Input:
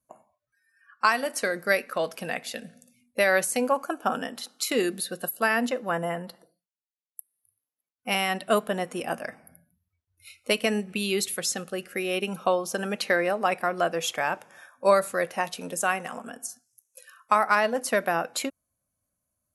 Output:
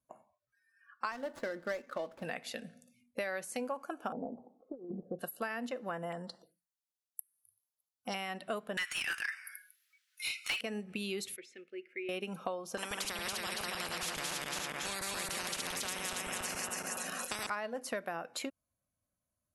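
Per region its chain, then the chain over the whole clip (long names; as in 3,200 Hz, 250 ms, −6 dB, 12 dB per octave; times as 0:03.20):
0:01.11–0:02.23: running median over 15 samples + notch filter 2,400 Hz, Q 22 + comb filter 3.4 ms, depth 37%
0:04.12–0:05.19: Butterworth low-pass 850 Hz 48 dB per octave + compressor whose output falls as the input rises −32 dBFS, ratio −0.5
0:06.12–0:08.14: phaser swept by the level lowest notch 330 Hz, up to 2,500 Hz, full sweep at −38.5 dBFS + high-shelf EQ 2,200 Hz +10.5 dB
0:08.77–0:10.61: Butterworth high-pass 1,500 Hz + high-shelf EQ 3,300 Hz +7 dB + mid-hump overdrive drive 31 dB, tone 3,800 Hz, clips at −7 dBFS
0:11.36–0:12.09: pair of resonant band-passes 900 Hz, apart 2.6 octaves + low-shelf EQ 490 Hz −6 dB
0:12.77–0:17.50: feedback delay that plays each chunk backwards 140 ms, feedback 62%, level −2 dB + every bin compressed towards the loudest bin 10 to 1
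whole clip: high-shelf EQ 7,100 Hz −7.5 dB; downward compressor 4 to 1, threshold −31 dBFS; level −4.5 dB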